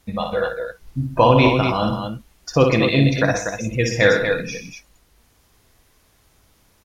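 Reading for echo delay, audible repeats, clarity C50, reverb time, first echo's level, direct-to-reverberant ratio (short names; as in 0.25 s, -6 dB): 58 ms, 4, none, none, -5.0 dB, none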